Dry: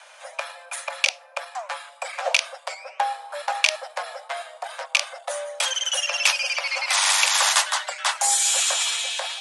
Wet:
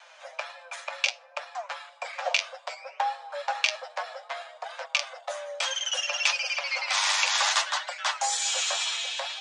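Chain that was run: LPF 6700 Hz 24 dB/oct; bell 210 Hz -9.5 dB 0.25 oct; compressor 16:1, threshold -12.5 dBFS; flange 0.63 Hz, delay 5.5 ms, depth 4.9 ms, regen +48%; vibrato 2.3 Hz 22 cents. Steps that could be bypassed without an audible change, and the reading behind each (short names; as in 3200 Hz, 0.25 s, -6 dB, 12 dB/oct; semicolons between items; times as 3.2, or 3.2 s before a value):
bell 210 Hz: input band starts at 450 Hz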